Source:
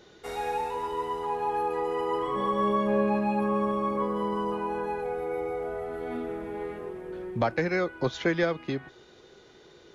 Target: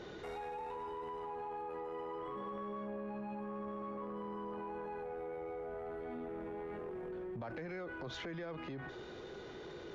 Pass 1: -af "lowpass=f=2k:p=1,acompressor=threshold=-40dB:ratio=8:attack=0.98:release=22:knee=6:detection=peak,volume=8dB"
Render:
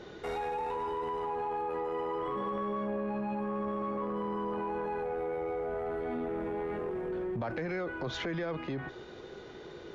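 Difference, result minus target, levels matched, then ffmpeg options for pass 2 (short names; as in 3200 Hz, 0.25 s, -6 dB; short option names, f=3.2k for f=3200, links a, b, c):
compressor: peak gain reduction -9 dB
-af "lowpass=f=2k:p=1,acompressor=threshold=-50dB:ratio=8:attack=0.98:release=22:knee=6:detection=peak,volume=8dB"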